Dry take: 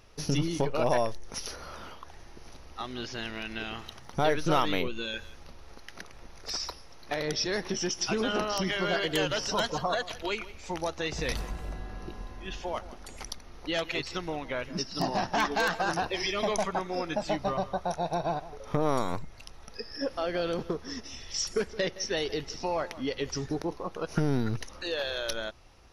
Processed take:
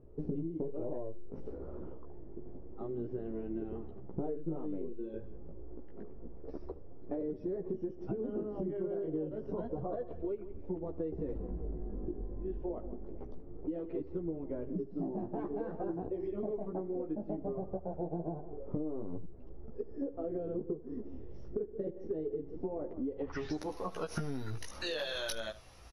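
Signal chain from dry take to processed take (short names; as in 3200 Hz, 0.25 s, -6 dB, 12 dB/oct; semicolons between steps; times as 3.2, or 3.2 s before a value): chorus voices 2, 0.28 Hz, delay 15 ms, depth 4.9 ms; on a send: echo 75 ms -20.5 dB; on the sum: low-pass sweep 380 Hz -> 11000 Hz, 23.12–23.64; compressor 8:1, threshold -37 dBFS, peak gain reduction 16.5 dB; gain +3.5 dB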